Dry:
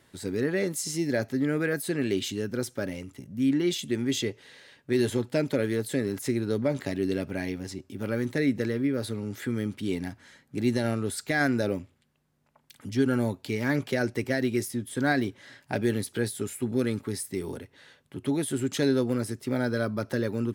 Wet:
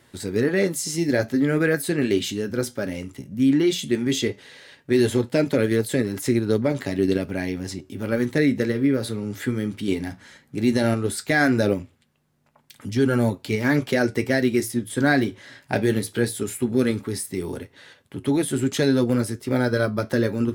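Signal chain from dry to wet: in parallel at -2 dB: level held to a coarse grid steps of 14 dB; on the sum: flange 0.16 Hz, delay 8.4 ms, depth 7 ms, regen -62%; trim +6.5 dB

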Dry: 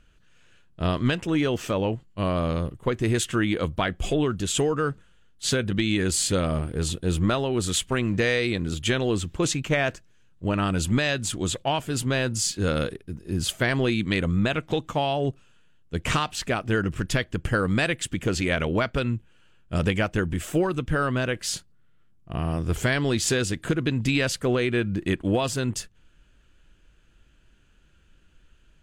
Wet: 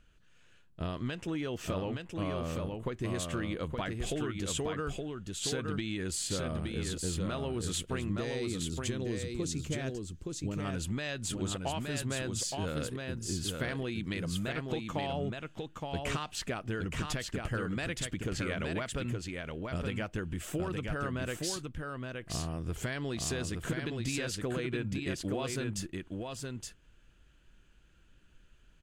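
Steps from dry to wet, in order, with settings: 8.10–10.65 s: high-order bell 1.4 kHz -8.5 dB 2.8 oct; compression, threshold -27 dBFS, peak gain reduction 9 dB; delay 869 ms -4 dB; trim -5 dB

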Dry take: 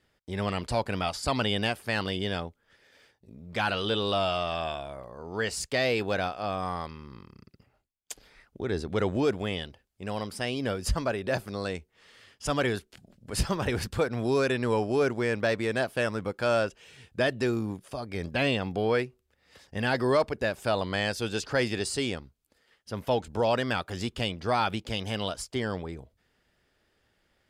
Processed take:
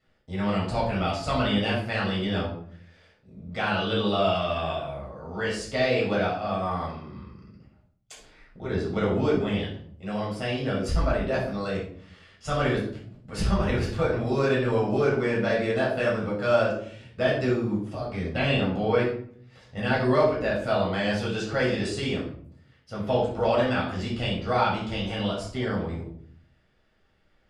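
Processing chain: distance through air 62 m; simulated room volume 770 m³, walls furnished, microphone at 6.8 m; trim -6.5 dB

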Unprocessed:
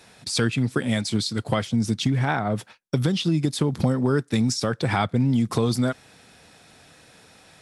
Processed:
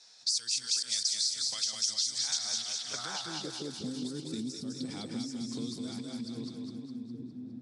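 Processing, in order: chunks repeated in reverse 546 ms, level -6 dB; pre-emphasis filter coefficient 0.8; level-controlled noise filter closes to 890 Hz, open at -28.5 dBFS; high-order bell 6.2 kHz +14.5 dB; compression, threshold -22 dBFS, peak gain reduction 10 dB; peak limiter -17 dBFS, peak gain reduction 7 dB; band-pass sweep 5.7 kHz -> 260 Hz, 2.38–3.77 s; two-band feedback delay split 330 Hz, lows 784 ms, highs 205 ms, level -4 dB; three bands compressed up and down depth 70%; trim +2 dB

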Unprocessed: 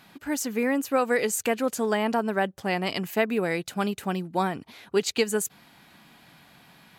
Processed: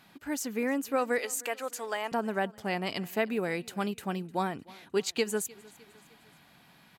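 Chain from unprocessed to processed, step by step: 1.18–2.12 s: high-pass 600 Hz 12 dB/octave; on a send: feedback delay 305 ms, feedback 51%, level -23 dB; on the sum: trim -5 dB

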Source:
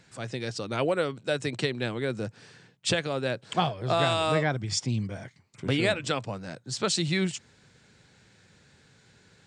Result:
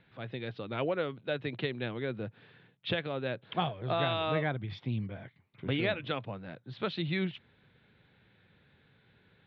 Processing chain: Chebyshev low-pass 3.7 kHz, order 5; trim -5 dB

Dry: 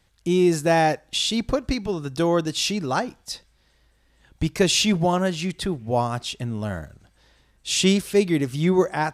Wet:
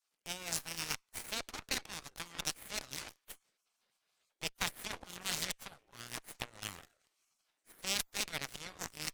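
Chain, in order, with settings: rotary cabinet horn 6 Hz, later 1.2 Hz, at 5.96 s; reverse; compression 8:1, threshold -28 dBFS, peak gain reduction 14.5 dB; reverse; spectral gate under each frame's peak -25 dB weak; Chebyshev shaper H 7 -18 dB, 8 -20 dB, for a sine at -29 dBFS; trim +12.5 dB

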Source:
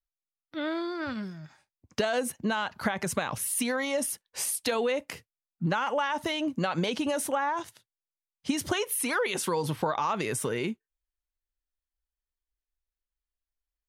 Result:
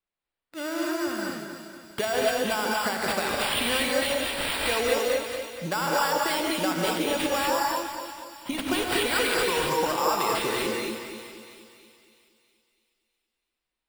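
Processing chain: tone controls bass -9 dB, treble +1 dB; sample-and-hold 7×; two-band feedback delay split 2.5 kHz, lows 237 ms, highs 325 ms, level -9 dB; gated-style reverb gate 260 ms rising, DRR -2 dB

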